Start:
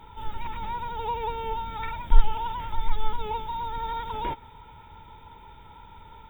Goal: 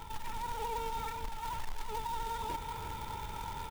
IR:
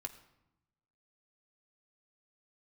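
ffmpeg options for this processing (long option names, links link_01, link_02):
-af "areverse,acompressor=mode=upward:threshold=-23dB:ratio=2.5,areverse,acrusher=bits=2:mode=log:mix=0:aa=0.000001,acompressor=threshold=-25dB:ratio=6,atempo=1.7,alimiter=limit=-22dB:level=0:latency=1:release=118,aecho=1:1:352:0.376,volume=-5.5dB"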